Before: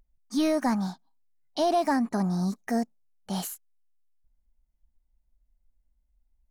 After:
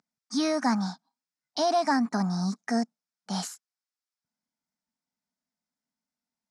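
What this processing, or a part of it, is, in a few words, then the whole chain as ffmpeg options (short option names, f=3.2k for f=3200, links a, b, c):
television speaker: -af "highpass=f=180:w=0.5412,highpass=f=180:w=1.3066,equalizer=f=360:t=q:w=4:g=-10,equalizer=f=550:t=q:w=4:g=-7,equalizer=f=1.4k:t=q:w=4:g=4,equalizer=f=2.9k:t=q:w=4:g=-6,equalizer=f=5.2k:t=q:w=4:g=7,lowpass=f=8.7k:w=0.5412,lowpass=f=8.7k:w=1.3066,volume=2dB"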